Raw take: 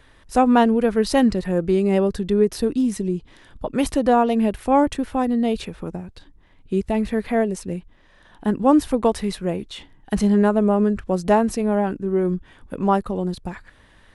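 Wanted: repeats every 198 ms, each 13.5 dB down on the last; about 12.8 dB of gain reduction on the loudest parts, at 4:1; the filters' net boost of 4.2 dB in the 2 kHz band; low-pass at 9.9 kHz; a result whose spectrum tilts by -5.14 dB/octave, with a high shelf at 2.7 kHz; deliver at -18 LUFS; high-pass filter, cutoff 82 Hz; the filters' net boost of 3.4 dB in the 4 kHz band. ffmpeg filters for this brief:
-af "highpass=82,lowpass=9900,equalizer=f=2000:t=o:g=6,highshelf=f=2700:g=-5.5,equalizer=f=4000:t=o:g=7,acompressor=threshold=0.0447:ratio=4,aecho=1:1:198|396:0.211|0.0444,volume=4.22"

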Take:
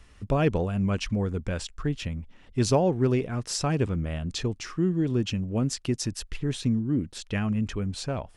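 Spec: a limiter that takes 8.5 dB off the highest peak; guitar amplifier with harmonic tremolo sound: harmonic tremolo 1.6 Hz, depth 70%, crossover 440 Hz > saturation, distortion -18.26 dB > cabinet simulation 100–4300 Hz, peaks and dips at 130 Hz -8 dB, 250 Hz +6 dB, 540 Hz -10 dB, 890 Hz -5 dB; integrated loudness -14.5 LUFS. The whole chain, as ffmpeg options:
-filter_complex "[0:a]alimiter=limit=0.106:level=0:latency=1,acrossover=split=440[s0][s1];[s0]aeval=exprs='val(0)*(1-0.7/2+0.7/2*cos(2*PI*1.6*n/s))':c=same[s2];[s1]aeval=exprs='val(0)*(1-0.7/2-0.7/2*cos(2*PI*1.6*n/s))':c=same[s3];[s2][s3]amix=inputs=2:normalize=0,asoftclip=threshold=0.0708,highpass=100,equalizer=f=130:t=q:w=4:g=-8,equalizer=f=250:t=q:w=4:g=6,equalizer=f=540:t=q:w=4:g=-10,equalizer=f=890:t=q:w=4:g=-5,lowpass=f=4300:w=0.5412,lowpass=f=4300:w=1.3066,volume=10"

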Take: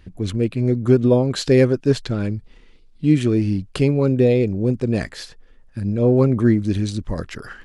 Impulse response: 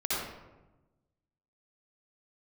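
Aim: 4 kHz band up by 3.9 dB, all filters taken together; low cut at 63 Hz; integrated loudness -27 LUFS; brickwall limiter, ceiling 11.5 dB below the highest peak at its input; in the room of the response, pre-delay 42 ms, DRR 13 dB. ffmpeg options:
-filter_complex "[0:a]highpass=63,equalizer=f=4000:t=o:g=4.5,alimiter=limit=0.168:level=0:latency=1,asplit=2[s0][s1];[1:a]atrim=start_sample=2205,adelay=42[s2];[s1][s2]afir=irnorm=-1:irlink=0,volume=0.0841[s3];[s0][s3]amix=inputs=2:normalize=0,volume=0.75"

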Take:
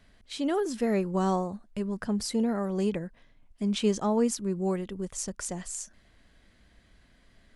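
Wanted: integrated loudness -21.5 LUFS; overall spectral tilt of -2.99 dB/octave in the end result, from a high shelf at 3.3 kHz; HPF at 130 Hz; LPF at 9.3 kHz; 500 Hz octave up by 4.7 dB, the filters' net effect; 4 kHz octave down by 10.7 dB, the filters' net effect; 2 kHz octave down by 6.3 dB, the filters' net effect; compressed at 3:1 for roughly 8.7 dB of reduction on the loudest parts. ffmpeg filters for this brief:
-af "highpass=130,lowpass=9300,equalizer=f=500:t=o:g=6.5,equalizer=f=2000:t=o:g=-5,highshelf=f=3300:g=-5.5,equalizer=f=4000:t=o:g=-8.5,acompressor=threshold=0.0355:ratio=3,volume=3.76"

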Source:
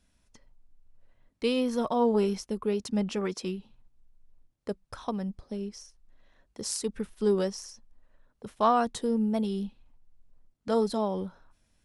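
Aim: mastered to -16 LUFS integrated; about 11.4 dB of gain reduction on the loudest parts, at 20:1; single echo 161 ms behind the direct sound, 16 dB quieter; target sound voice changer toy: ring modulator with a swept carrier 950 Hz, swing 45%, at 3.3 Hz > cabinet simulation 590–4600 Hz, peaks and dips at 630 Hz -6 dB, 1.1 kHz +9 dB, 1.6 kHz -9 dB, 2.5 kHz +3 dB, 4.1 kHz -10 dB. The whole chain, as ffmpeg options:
-af "acompressor=threshold=0.0316:ratio=20,aecho=1:1:161:0.158,aeval=exprs='val(0)*sin(2*PI*950*n/s+950*0.45/3.3*sin(2*PI*3.3*n/s))':c=same,highpass=590,equalizer=f=630:t=q:w=4:g=-6,equalizer=f=1100:t=q:w=4:g=9,equalizer=f=1600:t=q:w=4:g=-9,equalizer=f=2500:t=q:w=4:g=3,equalizer=f=4100:t=q:w=4:g=-10,lowpass=f=4600:w=0.5412,lowpass=f=4600:w=1.3066,volume=13.3"

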